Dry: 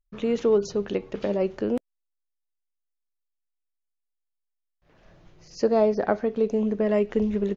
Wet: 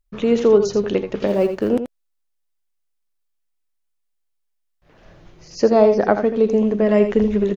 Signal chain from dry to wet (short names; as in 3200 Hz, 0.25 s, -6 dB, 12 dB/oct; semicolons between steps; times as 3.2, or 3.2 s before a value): 1.27–1.69 G.711 law mismatch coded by A; echo 82 ms -9 dB; gain +7 dB